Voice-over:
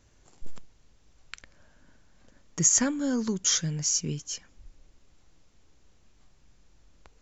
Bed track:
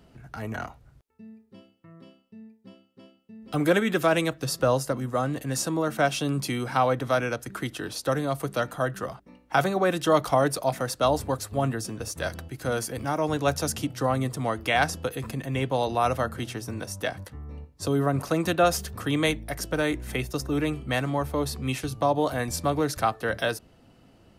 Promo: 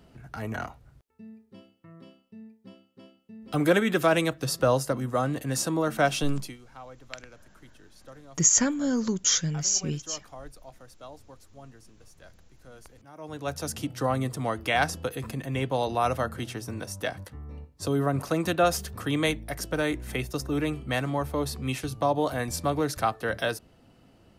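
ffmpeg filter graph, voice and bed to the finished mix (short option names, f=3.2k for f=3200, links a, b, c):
-filter_complex "[0:a]adelay=5800,volume=1.5dB[a];[1:a]volume=21dB,afade=t=out:st=6.23:d=0.34:silence=0.0749894,afade=t=in:st=13.12:d=0.86:silence=0.0891251[b];[a][b]amix=inputs=2:normalize=0"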